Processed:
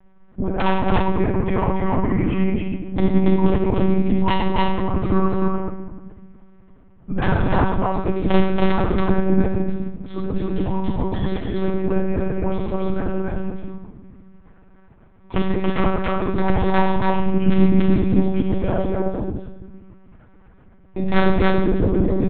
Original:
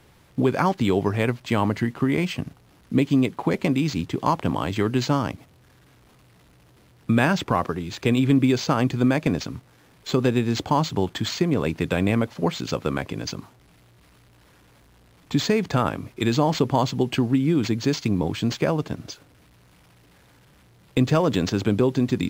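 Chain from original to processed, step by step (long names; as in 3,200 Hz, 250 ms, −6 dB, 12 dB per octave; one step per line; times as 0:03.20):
spectral envelope exaggerated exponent 1.5
low-pass filter 1,500 Hz 12 dB per octave
parametric band 420 Hz −11.5 dB 0.3 octaves
comb filter 6.3 ms, depth 99%
hum removal 74.7 Hz, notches 9
0:10.09–0:12.17: compressor whose output falls as the input rises −22 dBFS, ratio −0.5
wrap-around overflow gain 8 dB
flanger 0.12 Hz, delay 5.2 ms, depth 8.1 ms, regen −32%
soft clipping −16 dBFS, distortion −17 dB
loudspeakers that aren't time-aligned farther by 31 metres −9 dB, 97 metres −1 dB
rectangular room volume 740 cubic metres, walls mixed, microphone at 1.8 metres
one-pitch LPC vocoder at 8 kHz 190 Hz
level +1.5 dB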